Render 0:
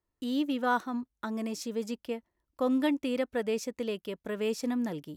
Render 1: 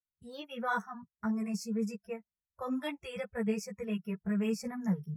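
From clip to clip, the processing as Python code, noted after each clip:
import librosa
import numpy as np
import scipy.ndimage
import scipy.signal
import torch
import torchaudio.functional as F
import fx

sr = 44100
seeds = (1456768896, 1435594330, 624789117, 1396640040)

y = fx.low_shelf_res(x, sr, hz=230.0, db=8.0, q=3.0)
y = fx.noise_reduce_blind(y, sr, reduce_db=26)
y = fx.ensemble(y, sr)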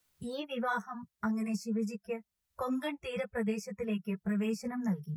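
y = fx.band_squash(x, sr, depth_pct=70)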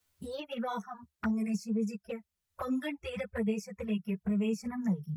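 y = fx.peak_eq(x, sr, hz=77.0, db=11.0, octaves=0.31)
y = fx.env_flanger(y, sr, rest_ms=11.0, full_db=-29.5)
y = y * 10.0 ** (2.0 / 20.0)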